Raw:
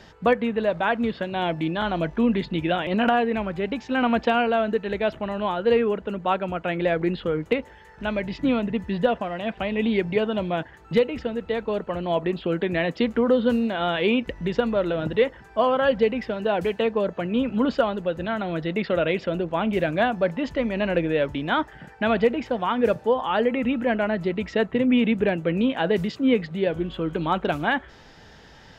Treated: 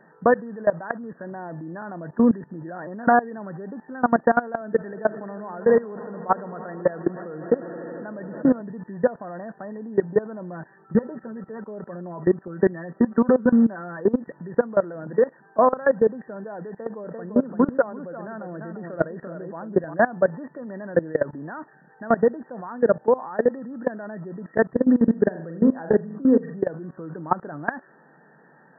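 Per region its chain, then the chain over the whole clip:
0:04.61–0:08.61: high-pass filter 71 Hz 24 dB per octave + echo that builds up and dies away 80 ms, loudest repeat 5, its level −18 dB
0:10.51–0:14.01: high-frequency loss of the air 61 metres + comb filter 5.2 ms, depth 70%
0:16.70–0:19.94: Bessel low-pass filter 2,900 Hz + single-tap delay 343 ms −6 dB
0:24.84–0:26.59: high-frequency loss of the air 320 metres + flutter between parallel walls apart 7.3 metres, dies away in 0.41 s
whole clip: brick-wall band-pass 130–1,900 Hz; output level in coarse steps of 20 dB; level +5.5 dB

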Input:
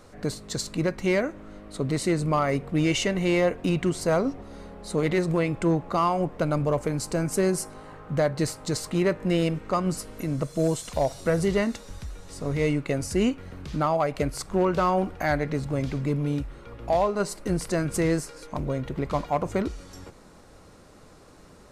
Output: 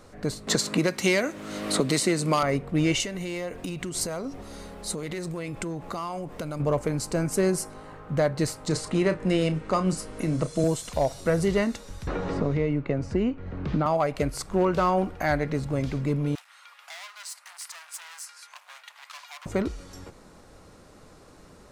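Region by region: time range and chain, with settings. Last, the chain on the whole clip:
0:00.47–0:02.43: high-pass filter 160 Hz + high-shelf EQ 2,500 Hz +8.5 dB + multiband upward and downward compressor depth 100%
0:03.00–0:06.60: downward compressor 10 to 1, threshold −29 dBFS + high-shelf EQ 4,300 Hz +11 dB + one half of a high-frequency compander encoder only
0:08.67–0:10.64: double-tracking delay 32 ms −11 dB + bad sample-rate conversion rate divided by 2×, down none, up filtered + multiband upward and downward compressor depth 40%
0:12.07–0:13.86: head-to-tape spacing loss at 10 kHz 29 dB + multiband upward and downward compressor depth 100%
0:16.35–0:19.46: hard clipping −31 dBFS + Bessel high-pass filter 1,500 Hz, order 8 + multiband upward and downward compressor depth 40%
whole clip: no processing

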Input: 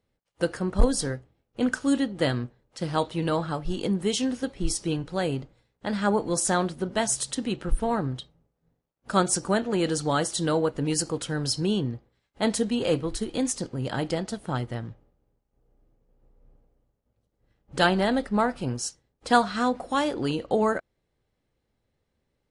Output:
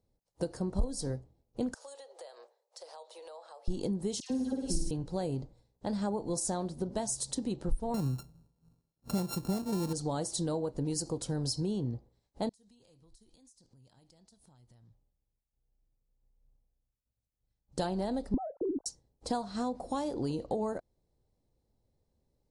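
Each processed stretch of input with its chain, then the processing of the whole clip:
0:01.74–0:03.68: Butterworth high-pass 480 Hz 48 dB per octave + downward compressor 10 to 1, threshold −41 dBFS
0:04.20–0:04.91: all-pass dispersion lows, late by 102 ms, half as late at 1,500 Hz + flutter between parallel walls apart 9.3 metres, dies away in 0.78 s
0:07.94–0:09.93: samples sorted by size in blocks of 32 samples + parametric band 160 Hz +7.5 dB 1.7 octaves
0:12.49–0:17.78: guitar amp tone stack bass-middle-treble 5-5-5 + downward compressor 12 to 1, threshold −56 dBFS
0:18.34–0:18.86: three sine waves on the formant tracks + Gaussian smoothing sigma 7.6 samples + spectral tilt −4.5 dB per octave
whole clip: flat-topped bell 2,000 Hz −12 dB; downward compressor 6 to 1, threshold −28 dBFS; low-shelf EQ 97 Hz +6 dB; level −2.5 dB

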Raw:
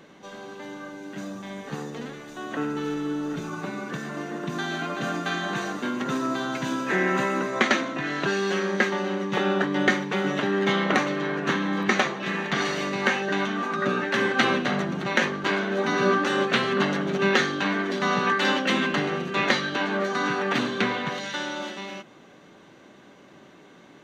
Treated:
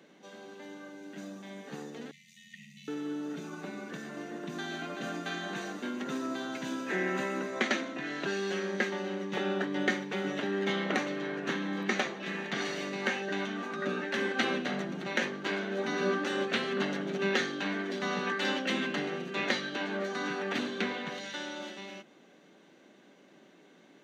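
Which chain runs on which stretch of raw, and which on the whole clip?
0:02.11–0:02.88: comb filter 3.8 ms, depth 31% + amplitude modulation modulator 86 Hz, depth 40% + linear-phase brick-wall band-stop 210–1,800 Hz
whole clip: high-pass filter 170 Hz 24 dB per octave; parametric band 1,100 Hz −6 dB 0.65 octaves; level −7 dB

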